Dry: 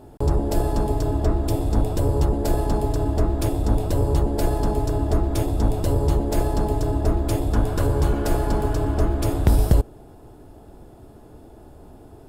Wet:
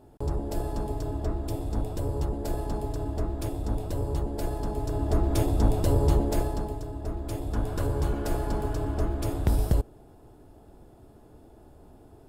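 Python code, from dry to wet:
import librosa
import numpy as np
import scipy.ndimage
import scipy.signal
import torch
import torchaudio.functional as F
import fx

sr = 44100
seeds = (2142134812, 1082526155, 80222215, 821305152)

y = fx.gain(x, sr, db=fx.line((4.71, -9.0), (5.32, -2.0), (6.22, -2.0), (6.89, -14.0), (7.75, -7.0)))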